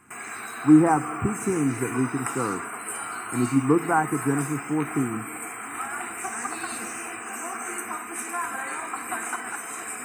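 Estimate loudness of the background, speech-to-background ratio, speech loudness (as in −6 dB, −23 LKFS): −32.0 LKFS, 8.0 dB, −24.0 LKFS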